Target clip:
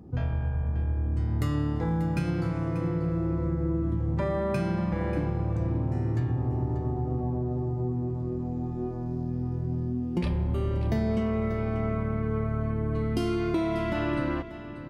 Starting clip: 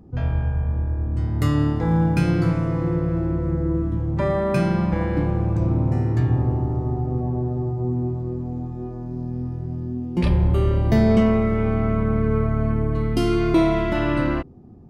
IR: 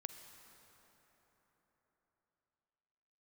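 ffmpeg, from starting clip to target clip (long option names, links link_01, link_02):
-af "highpass=46,acompressor=threshold=-25dB:ratio=5,aecho=1:1:588:0.224"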